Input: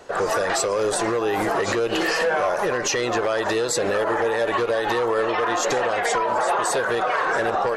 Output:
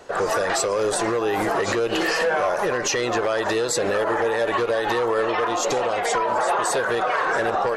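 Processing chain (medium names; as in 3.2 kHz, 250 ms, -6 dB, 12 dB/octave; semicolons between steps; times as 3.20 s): 5.46–6.12 s: peaking EQ 1.7 kHz -12.5 dB -> -5 dB 0.4 oct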